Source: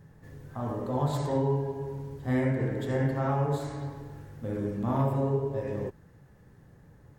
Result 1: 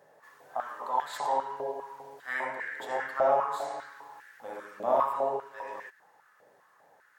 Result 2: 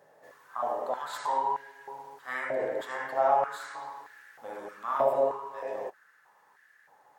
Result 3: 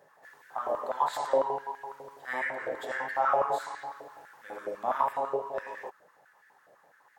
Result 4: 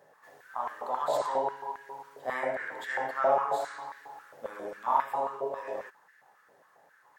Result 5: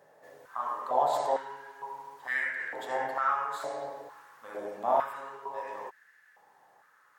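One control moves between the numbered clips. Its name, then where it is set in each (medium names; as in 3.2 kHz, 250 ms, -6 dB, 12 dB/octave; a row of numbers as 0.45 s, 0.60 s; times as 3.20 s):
step-sequenced high-pass, rate: 5 Hz, 3.2 Hz, 12 Hz, 7.4 Hz, 2.2 Hz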